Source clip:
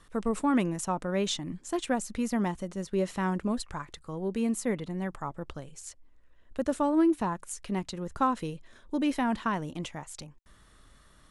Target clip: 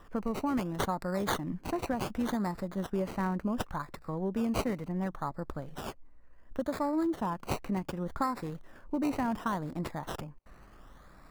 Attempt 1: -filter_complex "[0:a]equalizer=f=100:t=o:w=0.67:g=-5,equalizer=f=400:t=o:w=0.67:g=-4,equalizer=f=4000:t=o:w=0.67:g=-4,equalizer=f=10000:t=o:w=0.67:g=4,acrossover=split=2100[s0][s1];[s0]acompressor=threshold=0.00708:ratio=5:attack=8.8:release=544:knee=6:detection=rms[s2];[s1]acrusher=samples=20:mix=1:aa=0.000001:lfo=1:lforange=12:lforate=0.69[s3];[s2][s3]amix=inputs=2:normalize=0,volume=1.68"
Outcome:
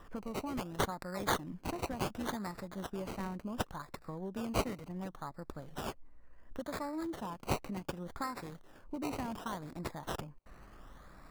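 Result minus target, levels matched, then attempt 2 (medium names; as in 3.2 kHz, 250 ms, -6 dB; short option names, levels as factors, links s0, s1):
compression: peak gain reduction +9 dB
-filter_complex "[0:a]equalizer=f=100:t=o:w=0.67:g=-5,equalizer=f=400:t=o:w=0.67:g=-4,equalizer=f=4000:t=o:w=0.67:g=-4,equalizer=f=10000:t=o:w=0.67:g=4,acrossover=split=2100[s0][s1];[s0]acompressor=threshold=0.0266:ratio=5:attack=8.8:release=544:knee=6:detection=rms[s2];[s1]acrusher=samples=20:mix=1:aa=0.000001:lfo=1:lforange=12:lforate=0.69[s3];[s2][s3]amix=inputs=2:normalize=0,volume=1.68"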